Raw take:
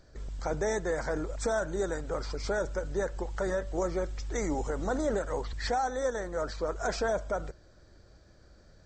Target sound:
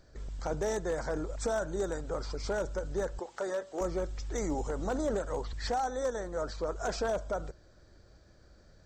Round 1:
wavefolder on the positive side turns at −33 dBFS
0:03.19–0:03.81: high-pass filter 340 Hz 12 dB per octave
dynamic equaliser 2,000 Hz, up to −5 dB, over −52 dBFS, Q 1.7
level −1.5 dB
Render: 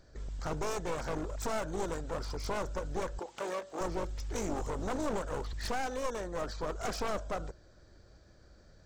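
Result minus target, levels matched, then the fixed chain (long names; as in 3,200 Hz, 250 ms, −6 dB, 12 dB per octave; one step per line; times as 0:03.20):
wavefolder on the positive side: distortion +21 dB
wavefolder on the positive side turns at −23.5 dBFS
0:03.19–0:03.81: high-pass filter 340 Hz 12 dB per octave
dynamic equaliser 2,000 Hz, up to −5 dB, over −52 dBFS, Q 1.7
level −1.5 dB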